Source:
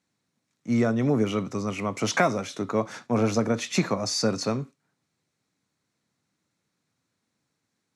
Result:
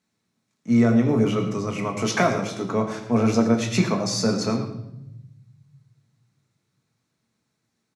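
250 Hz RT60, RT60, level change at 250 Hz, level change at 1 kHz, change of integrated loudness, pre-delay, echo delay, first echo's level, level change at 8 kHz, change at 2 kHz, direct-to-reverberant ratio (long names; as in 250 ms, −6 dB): 1.9 s, 0.85 s, +5.5 dB, +2.0 dB, +3.5 dB, 5 ms, 111 ms, −14.0 dB, +1.0 dB, +1.5 dB, 2.5 dB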